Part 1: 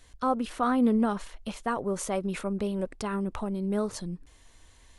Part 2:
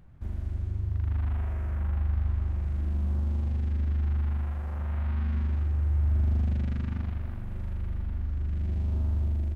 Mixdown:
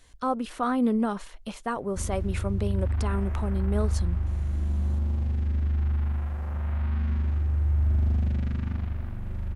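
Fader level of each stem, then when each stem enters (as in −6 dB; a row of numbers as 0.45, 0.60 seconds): −0.5, +1.5 decibels; 0.00, 1.75 seconds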